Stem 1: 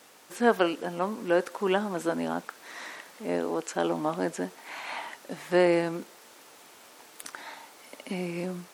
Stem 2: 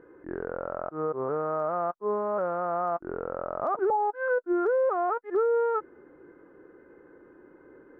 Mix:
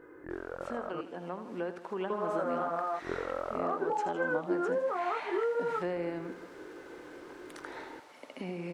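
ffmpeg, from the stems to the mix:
ffmpeg -i stem1.wav -i stem2.wav -filter_complex "[0:a]aemphasis=mode=reproduction:type=75fm,acrossover=split=130[link_01][link_02];[link_02]acompressor=threshold=-33dB:ratio=3[link_03];[link_01][link_03]amix=inputs=2:normalize=0,adelay=300,volume=-7dB,asplit=2[link_04][link_05];[link_05]volume=-11dB[link_06];[1:a]highshelf=frequency=2000:gain=10.5,acompressor=threshold=-35dB:ratio=6,flanger=delay=19:depth=7.1:speed=1.2,volume=2.5dB,asplit=3[link_07][link_08][link_09];[link_07]atrim=end=1.01,asetpts=PTS-STARTPTS,afade=type=out:start_time=1.006:duration=0.004:curve=hsin[link_10];[link_08]atrim=start=1.01:end=2.1,asetpts=PTS-STARTPTS,volume=0[link_11];[link_09]atrim=start=2.1,asetpts=PTS-STARTPTS,afade=type=in:duration=0.004:curve=hsin[link_12];[link_10][link_11][link_12]concat=n=3:v=0:a=1[link_13];[link_06]aecho=0:1:80|160|240|320|400|480|560|640:1|0.55|0.303|0.166|0.0915|0.0503|0.0277|0.0152[link_14];[link_04][link_13][link_14]amix=inputs=3:normalize=0,equalizer=frequency=210:width_type=o:width=0.26:gain=-5,dynaudnorm=framelen=840:gausssize=3:maxgain=4.5dB" out.wav

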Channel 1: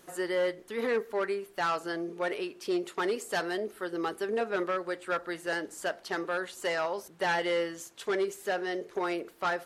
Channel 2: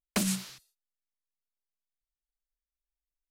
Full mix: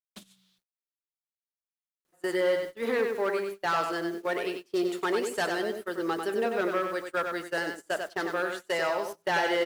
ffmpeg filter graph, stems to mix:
ffmpeg -i stem1.wav -i stem2.wav -filter_complex "[0:a]adelay=2050,volume=1.5dB,asplit=2[link_01][link_02];[link_02]volume=-5.5dB[link_03];[1:a]equalizer=frequency=3500:width_type=o:width=0.51:gain=12.5,bandreject=frequency=62.46:width_type=h:width=4,bandreject=frequency=124.92:width_type=h:width=4,bandreject=frequency=187.38:width_type=h:width=4,bandreject=frequency=249.84:width_type=h:width=4,bandreject=frequency=312.3:width_type=h:width=4,bandreject=frequency=374.76:width_type=h:width=4,bandreject=frequency=437.22:width_type=h:width=4,bandreject=frequency=499.68:width_type=h:width=4,bandreject=frequency=562.14:width_type=h:width=4,bandreject=frequency=624.6:width_type=h:width=4,bandreject=frequency=687.06:width_type=h:width=4,bandreject=frequency=749.52:width_type=h:width=4,bandreject=frequency=811.98:width_type=h:width=4,bandreject=frequency=874.44:width_type=h:width=4,bandreject=frequency=936.9:width_type=h:width=4,bandreject=frequency=999.36:width_type=h:width=4,bandreject=frequency=1061.82:width_type=h:width=4,bandreject=frequency=1124.28:width_type=h:width=4,bandreject=frequency=1186.74:width_type=h:width=4,bandreject=frequency=1249.2:width_type=h:width=4,bandreject=frequency=1311.66:width_type=h:width=4,bandreject=frequency=1374.12:width_type=h:width=4,bandreject=frequency=1436.58:width_type=h:width=4,bandreject=frequency=1499.04:width_type=h:width=4,bandreject=frequency=1561.5:width_type=h:width=4,bandreject=frequency=1623.96:width_type=h:width=4,bandreject=frequency=1686.42:width_type=h:width=4,bandreject=frequency=1748.88:width_type=h:width=4,bandreject=frequency=1811.34:width_type=h:width=4,bandreject=frequency=1873.8:width_type=h:width=4,bandreject=frequency=1936.26:width_type=h:width=4,bandreject=frequency=1998.72:width_type=h:width=4,bandreject=frequency=2061.18:width_type=h:width=4,bandreject=frequency=2123.64:width_type=h:width=4,bandreject=frequency=2186.1:width_type=h:width=4,bandreject=frequency=2248.56:width_type=h:width=4,acompressor=threshold=-35dB:ratio=4,volume=-2dB[link_04];[link_03]aecho=0:1:96|192|288|384:1|0.31|0.0961|0.0298[link_05];[link_01][link_04][link_05]amix=inputs=3:normalize=0,acrusher=bits=8:mix=0:aa=0.000001,agate=range=-24dB:threshold=-35dB:ratio=16:detection=peak" out.wav

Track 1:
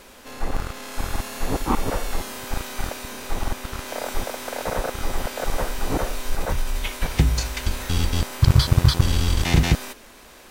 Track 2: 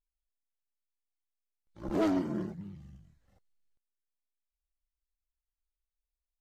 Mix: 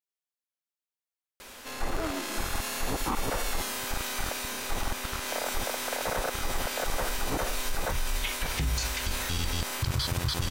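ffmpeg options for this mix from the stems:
ffmpeg -i stem1.wav -i stem2.wav -filter_complex "[0:a]tiltshelf=frequency=830:gain=-3.5,adelay=1400,volume=-1dB[link_01];[1:a]highpass=400,volume=-0.5dB[link_02];[link_01][link_02]amix=inputs=2:normalize=0,alimiter=limit=-20dB:level=0:latency=1:release=42" out.wav

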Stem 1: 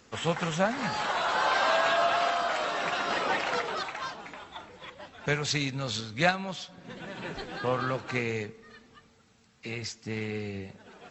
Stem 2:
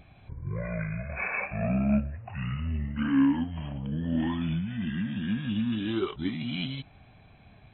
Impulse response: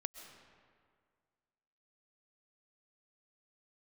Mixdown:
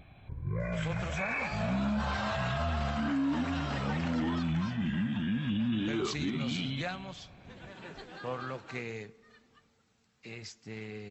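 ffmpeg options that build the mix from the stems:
-filter_complex "[0:a]adelay=600,volume=-8.5dB[link_01];[1:a]volume=-0.5dB,asplit=2[link_02][link_03];[link_03]volume=-14.5dB,aecho=0:1:314:1[link_04];[link_01][link_02][link_04]amix=inputs=3:normalize=0,alimiter=limit=-24dB:level=0:latency=1:release=16"

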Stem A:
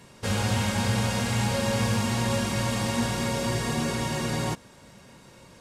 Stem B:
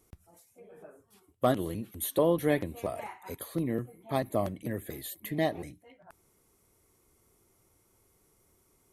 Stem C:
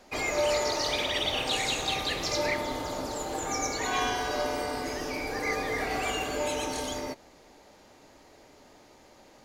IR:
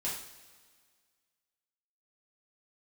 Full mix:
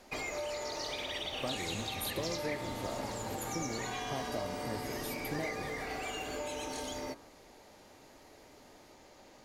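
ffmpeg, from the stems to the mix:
-filter_complex "[0:a]adelay=1300,volume=-15dB[link_01];[1:a]acompressor=threshold=-31dB:ratio=6,volume=-4.5dB[link_02];[2:a]bandreject=frequency=57.45:width_type=h:width=4,bandreject=frequency=114.9:width_type=h:width=4,bandreject=frequency=172.35:width_type=h:width=4,bandreject=frequency=229.8:width_type=h:width=4,bandreject=frequency=287.25:width_type=h:width=4,bandreject=frequency=344.7:width_type=h:width=4,bandreject=frequency=402.15:width_type=h:width=4,bandreject=frequency=459.6:width_type=h:width=4,bandreject=frequency=517.05:width_type=h:width=4,bandreject=frequency=574.5:width_type=h:width=4,bandreject=frequency=631.95:width_type=h:width=4,bandreject=frequency=689.4:width_type=h:width=4,bandreject=frequency=746.85:width_type=h:width=4,bandreject=frequency=804.3:width_type=h:width=4,bandreject=frequency=861.75:width_type=h:width=4,bandreject=frequency=919.2:width_type=h:width=4,bandreject=frequency=976.65:width_type=h:width=4,bandreject=frequency=1034.1:width_type=h:width=4,bandreject=frequency=1091.55:width_type=h:width=4,bandreject=frequency=1149:width_type=h:width=4,bandreject=frequency=1206.45:width_type=h:width=4,bandreject=frequency=1263.9:width_type=h:width=4,bandreject=frequency=1321.35:width_type=h:width=4,bandreject=frequency=1378.8:width_type=h:width=4,bandreject=frequency=1436.25:width_type=h:width=4,bandreject=frequency=1493.7:width_type=h:width=4,bandreject=frequency=1551.15:width_type=h:width=4,bandreject=frequency=1608.6:width_type=h:width=4,bandreject=frequency=1666.05:width_type=h:width=4,volume=-1.5dB[link_03];[link_01][link_03]amix=inputs=2:normalize=0,acompressor=threshold=-36dB:ratio=6,volume=0dB[link_04];[link_02][link_04]amix=inputs=2:normalize=0"

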